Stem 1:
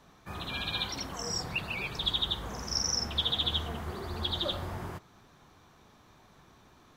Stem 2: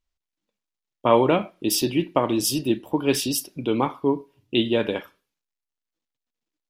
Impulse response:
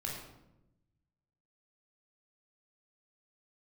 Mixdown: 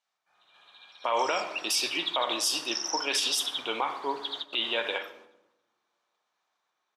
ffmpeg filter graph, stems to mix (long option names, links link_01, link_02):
-filter_complex "[0:a]volume=-2dB,asplit=3[link_01][link_02][link_03];[link_02]volume=-23dB[link_04];[link_03]volume=-16.5dB[link_05];[1:a]tiltshelf=frequency=670:gain=-3,volume=-0.5dB,asplit=3[link_06][link_07][link_08];[link_07]volume=-9dB[link_09];[link_08]apad=whole_len=307232[link_10];[link_01][link_10]sidechaingate=range=-33dB:threshold=-56dB:ratio=16:detection=peak[link_11];[2:a]atrim=start_sample=2205[link_12];[link_04][link_09]amix=inputs=2:normalize=0[link_13];[link_13][link_12]afir=irnorm=-1:irlink=0[link_14];[link_05]aecho=0:1:275|550|825|1100:1|0.23|0.0529|0.0122[link_15];[link_11][link_06][link_14][link_15]amix=inputs=4:normalize=0,highpass=770,lowpass=7600,alimiter=limit=-16.5dB:level=0:latency=1:release=62"